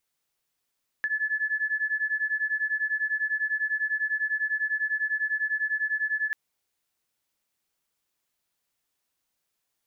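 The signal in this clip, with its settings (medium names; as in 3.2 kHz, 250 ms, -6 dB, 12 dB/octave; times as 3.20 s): beating tones 1.72 kHz, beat 10 Hz, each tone -28 dBFS 5.29 s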